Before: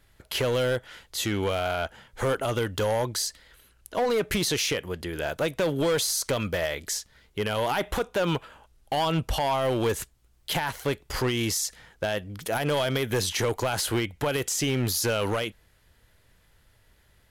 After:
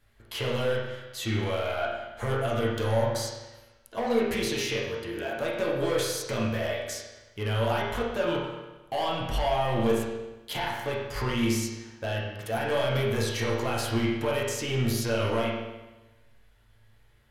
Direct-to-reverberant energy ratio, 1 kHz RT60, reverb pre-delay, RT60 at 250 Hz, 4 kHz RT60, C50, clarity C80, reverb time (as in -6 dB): -5.5 dB, 1.1 s, 9 ms, 1.1 s, 1.0 s, 1.5 dB, 4.0 dB, 1.1 s